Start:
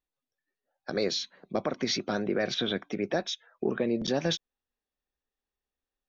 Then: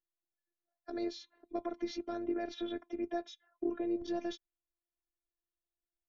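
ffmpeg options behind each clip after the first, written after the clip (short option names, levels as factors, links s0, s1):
-af "tiltshelf=f=1200:g=6.5,afftfilt=real='hypot(re,im)*cos(PI*b)':imag='0':win_size=512:overlap=0.75,volume=0.376"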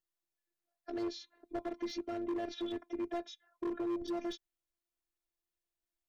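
-af "volume=44.7,asoftclip=hard,volume=0.0224,volume=1.12"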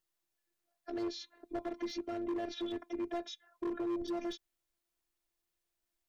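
-af "alimiter=level_in=4.47:limit=0.0631:level=0:latency=1:release=46,volume=0.224,volume=1.78"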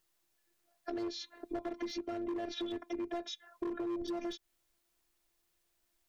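-af "acompressor=threshold=0.00562:ratio=4,volume=2.51"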